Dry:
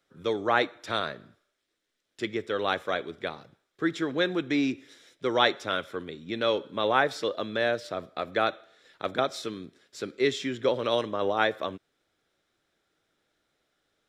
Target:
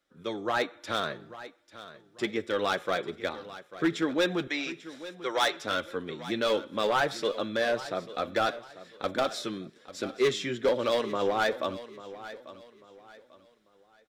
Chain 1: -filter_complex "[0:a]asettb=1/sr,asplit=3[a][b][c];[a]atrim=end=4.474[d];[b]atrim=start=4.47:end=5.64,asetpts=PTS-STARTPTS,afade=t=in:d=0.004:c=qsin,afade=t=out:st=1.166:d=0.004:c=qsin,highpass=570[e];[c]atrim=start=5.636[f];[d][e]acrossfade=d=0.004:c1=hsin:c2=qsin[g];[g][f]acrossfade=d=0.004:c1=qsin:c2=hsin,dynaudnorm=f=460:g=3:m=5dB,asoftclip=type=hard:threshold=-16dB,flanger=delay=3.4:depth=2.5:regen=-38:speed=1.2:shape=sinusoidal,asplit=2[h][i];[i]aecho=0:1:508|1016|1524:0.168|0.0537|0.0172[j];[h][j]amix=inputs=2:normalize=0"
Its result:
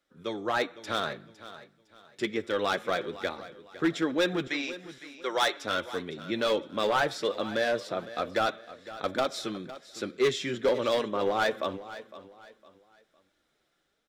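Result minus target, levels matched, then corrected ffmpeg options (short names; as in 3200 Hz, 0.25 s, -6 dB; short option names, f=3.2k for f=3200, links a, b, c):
echo 0.335 s early
-filter_complex "[0:a]asettb=1/sr,asplit=3[a][b][c];[a]atrim=end=4.474[d];[b]atrim=start=4.47:end=5.64,asetpts=PTS-STARTPTS,afade=t=in:d=0.004:c=qsin,afade=t=out:st=1.166:d=0.004:c=qsin,highpass=570[e];[c]atrim=start=5.636[f];[d][e]acrossfade=d=0.004:c1=hsin:c2=qsin[g];[g][f]acrossfade=d=0.004:c1=qsin:c2=hsin,dynaudnorm=f=460:g=3:m=5dB,asoftclip=type=hard:threshold=-16dB,flanger=delay=3.4:depth=2.5:regen=-38:speed=1.2:shape=sinusoidal,asplit=2[h][i];[i]aecho=0:1:843|1686|2529:0.168|0.0537|0.0172[j];[h][j]amix=inputs=2:normalize=0"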